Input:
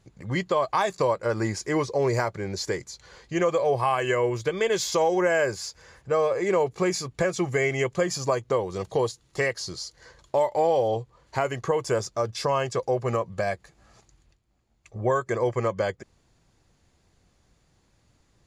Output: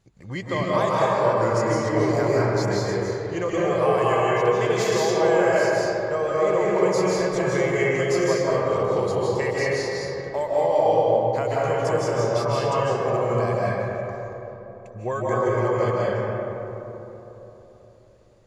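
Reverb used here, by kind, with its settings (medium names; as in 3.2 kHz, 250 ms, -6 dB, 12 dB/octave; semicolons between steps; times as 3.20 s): algorithmic reverb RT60 3.7 s, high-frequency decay 0.35×, pre-delay 115 ms, DRR -7 dB; trim -4.5 dB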